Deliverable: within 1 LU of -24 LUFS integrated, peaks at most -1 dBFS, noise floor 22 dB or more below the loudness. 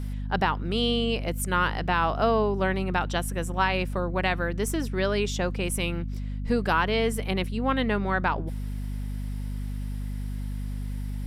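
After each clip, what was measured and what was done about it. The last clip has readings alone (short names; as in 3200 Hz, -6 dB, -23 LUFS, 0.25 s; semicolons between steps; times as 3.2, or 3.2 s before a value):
hum 50 Hz; harmonics up to 250 Hz; hum level -29 dBFS; loudness -27.5 LUFS; peak -11.0 dBFS; loudness target -24.0 LUFS
-> de-hum 50 Hz, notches 5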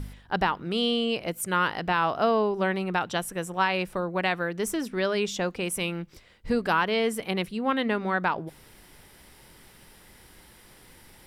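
hum none; loudness -27.0 LUFS; peak -12.0 dBFS; loudness target -24.0 LUFS
-> gain +3 dB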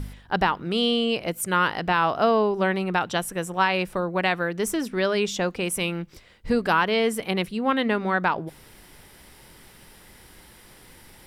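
loudness -24.0 LUFS; peak -9.0 dBFS; noise floor -51 dBFS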